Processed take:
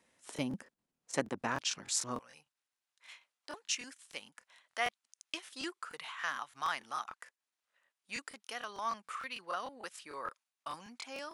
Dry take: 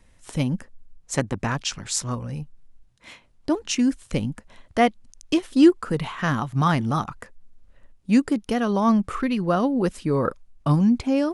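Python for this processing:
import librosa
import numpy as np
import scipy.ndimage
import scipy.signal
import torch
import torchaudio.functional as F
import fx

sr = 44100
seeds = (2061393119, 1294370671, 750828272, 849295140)

y = fx.highpass(x, sr, hz=fx.steps((0.0, 270.0), (2.19, 1200.0)), slope=12)
y = fx.buffer_crackle(y, sr, first_s=0.34, period_s=0.15, block=1024, kind='repeat')
y = y * 10.0 ** (-7.5 / 20.0)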